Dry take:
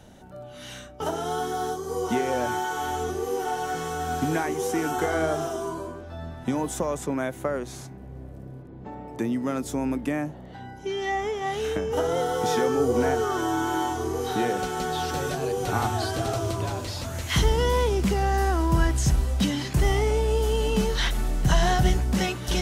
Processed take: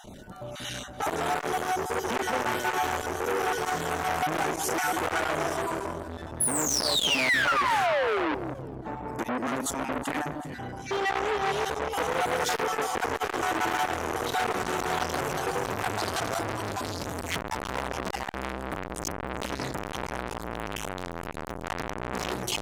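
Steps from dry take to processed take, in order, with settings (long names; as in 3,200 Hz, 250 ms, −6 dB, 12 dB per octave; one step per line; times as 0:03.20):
time-frequency cells dropped at random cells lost 25%
high-shelf EQ 9,500 Hz +2.5 dB
sound drawn into the spectrogram fall, 0:06.40–0:08.35, 280–11,000 Hz −27 dBFS
hard clipping −26 dBFS, distortion −7 dB
delay that swaps between a low-pass and a high-pass 189 ms, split 1,400 Hz, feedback 53%, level −9 dB
saturating transformer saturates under 1,500 Hz
level +7 dB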